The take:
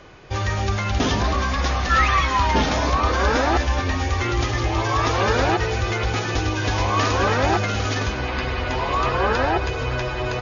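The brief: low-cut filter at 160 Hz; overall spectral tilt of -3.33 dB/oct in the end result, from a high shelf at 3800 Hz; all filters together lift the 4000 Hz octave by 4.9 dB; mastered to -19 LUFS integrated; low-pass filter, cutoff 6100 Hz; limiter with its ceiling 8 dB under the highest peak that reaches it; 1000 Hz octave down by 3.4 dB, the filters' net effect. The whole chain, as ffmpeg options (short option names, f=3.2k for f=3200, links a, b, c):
-af "highpass=160,lowpass=6.1k,equalizer=f=1k:t=o:g=-5,highshelf=f=3.8k:g=5.5,equalizer=f=4k:t=o:g=4,volume=5.5dB,alimiter=limit=-10dB:level=0:latency=1"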